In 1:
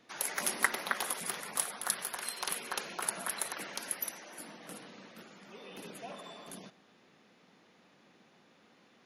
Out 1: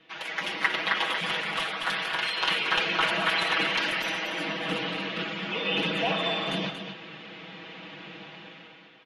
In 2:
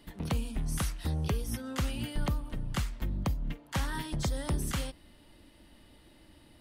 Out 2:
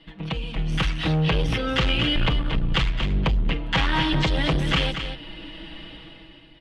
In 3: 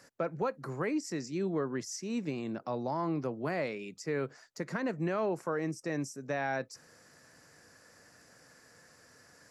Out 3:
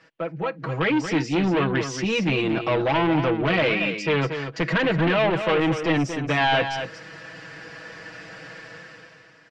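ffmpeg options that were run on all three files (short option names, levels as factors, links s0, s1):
-af "aecho=1:1:6.2:0.98,dynaudnorm=f=170:g=9:m=5.62,asoftclip=type=tanh:threshold=0.119,lowpass=f=3000:t=q:w=2.7,aecho=1:1:232:0.376"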